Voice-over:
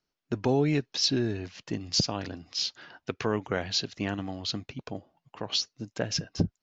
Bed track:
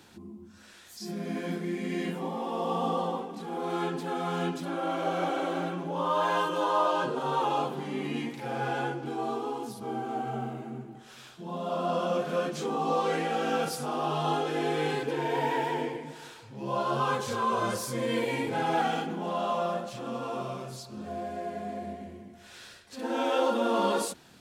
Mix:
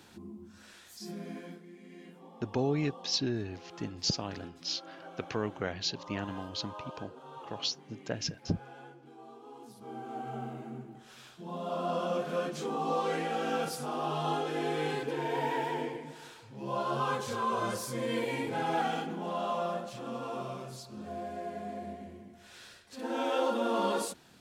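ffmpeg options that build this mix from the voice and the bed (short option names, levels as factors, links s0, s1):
-filter_complex "[0:a]adelay=2100,volume=0.562[s0];[1:a]volume=5.31,afade=t=out:st=0.71:d=0.92:silence=0.125893,afade=t=in:st=9.4:d=1.26:silence=0.16788[s1];[s0][s1]amix=inputs=2:normalize=0"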